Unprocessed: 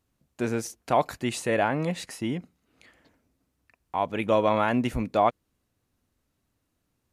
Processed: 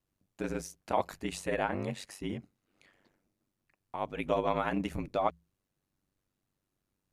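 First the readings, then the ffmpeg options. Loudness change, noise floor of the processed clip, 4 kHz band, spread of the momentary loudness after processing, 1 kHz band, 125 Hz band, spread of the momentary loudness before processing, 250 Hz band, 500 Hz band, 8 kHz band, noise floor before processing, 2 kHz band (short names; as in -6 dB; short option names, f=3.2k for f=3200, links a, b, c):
-7.5 dB, -85 dBFS, -7.5 dB, 9 LU, -8.0 dB, -8.0 dB, 9 LU, -8.0 dB, -7.5 dB, -7.5 dB, -78 dBFS, -7.5 dB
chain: -af "bandreject=f=60:t=h:w=6,bandreject=f=120:t=h:w=6,aeval=exprs='val(0)*sin(2*PI*48*n/s)':c=same,volume=-4.5dB"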